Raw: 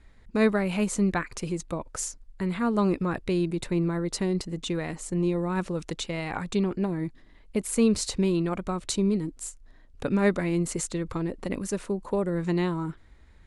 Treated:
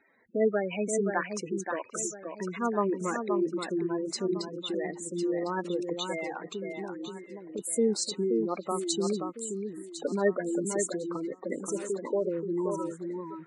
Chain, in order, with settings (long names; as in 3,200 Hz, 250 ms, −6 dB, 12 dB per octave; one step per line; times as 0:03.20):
high-pass filter 340 Hz 12 dB per octave
gate on every frequency bin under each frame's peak −10 dB strong
0:06.26–0:07.59: downward compressor 2 to 1, threshold −41 dBFS, peak gain reduction 8.5 dB
delay that swaps between a low-pass and a high-pass 527 ms, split 2,500 Hz, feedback 52%, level −5.5 dB
level +1 dB